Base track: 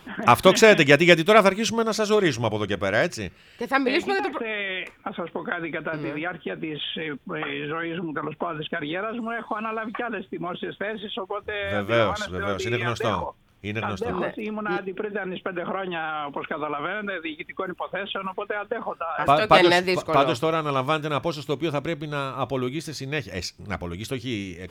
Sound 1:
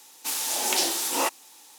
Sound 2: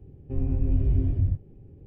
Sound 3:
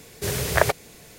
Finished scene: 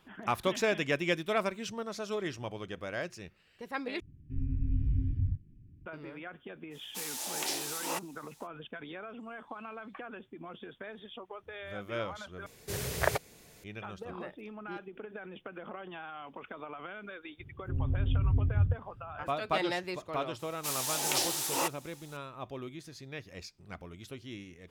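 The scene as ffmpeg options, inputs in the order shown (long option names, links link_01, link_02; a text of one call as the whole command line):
ffmpeg -i bed.wav -i cue0.wav -i cue1.wav -i cue2.wav -filter_complex "[2:a]asplit=2[link_01][link_02];[1:a]asplit=2[link_03][link_04];[0:a]volume=-15dB[link_05];[link_01]asuperstop=centerf=670:order=8:qfactor=0.56[link_06];[link_02]equalizer=frequency=100:width=0.54:gain=12[link_07];[link_05]asplit=3[link_08][link_09][link_10];[link_08]atrim=end=4.004[link_11];[link_06]atrim=end=1.86,asetpts=PTS-STARTPTS,volume=-7dB[link_12];[link_09]atrim=start=5.856:end=12.464[link_13];[3:a]atrim=end=1.18,asetpts=PTS-STARTPTS,volume=-9.5dB[link_14];[link_10]atrim=start=13.636[link_15];[link_03]atrim=end=1.78,asetpts=PTS-STARTPTS,volume=-10.5dB,afade=type=in:duration=0.05,afade=type=out:start_time=1.73:duration=0.05,adelay=6700[link_16];[link_07]atrim=end=1.86,asetpts=PTS-STARTPTS,volume=-14dB,afade=type=in:duration=0.004:curve=hsin,afade=type=out:start_time=1.856:duration=0.004:curve=hsin,adelay=17380[link_17];[link_04]atrim=end=1.78,asetpts=PTS-STARTPTS,volume=-6dB,afade=type=in:duration=0.004:curve=hsin,afade=type=out:start_time=1.776:duration=0.004:curve=hsin,adelay=20390[link_18];[link_11][link_12]acrossfade=duration=0.004:curve1=hsin:curve2=hsin[link_19];[link_19][link_13]acrossfade=duration=0.004:curve1=hsin:curve2=hsin[link_20];[link_20][link_14]acrossfade=duration=0.004:curve1=hsin:curve2=hsin[link_21];[link_21][link_15]acrossfade=duration=0.004:curve1=hsin:curve2=hsin[link_22];[link_22][link_16][link_17][link_18]amix=inputs=4:normalize=0" out.wav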